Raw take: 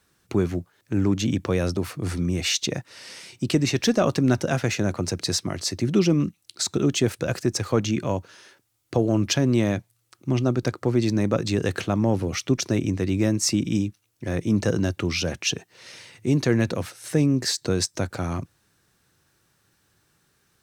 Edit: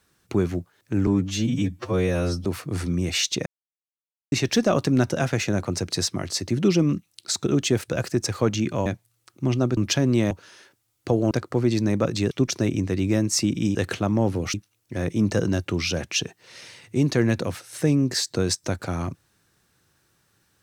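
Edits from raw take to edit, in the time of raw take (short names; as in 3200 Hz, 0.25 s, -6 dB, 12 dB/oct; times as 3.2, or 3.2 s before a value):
1.07–1.76 stretch 2×
2.77–3.63 mute
8.17–9.17 swap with 9.71–10.62
11.62–12.41 move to 13.85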